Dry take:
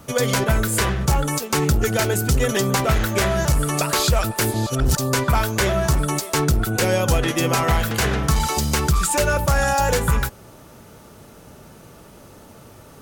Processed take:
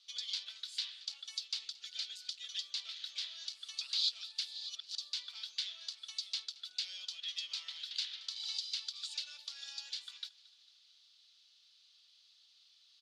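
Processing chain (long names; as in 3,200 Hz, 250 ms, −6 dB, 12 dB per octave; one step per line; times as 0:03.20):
downward compressor, threshold −19 dBFS, peak gain reduction 5.5 dB
flat-topped band-pass 4,000 Hz, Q 2.7
repeating echo 225 ms, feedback 54%, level −21 dB
level −2.5 dB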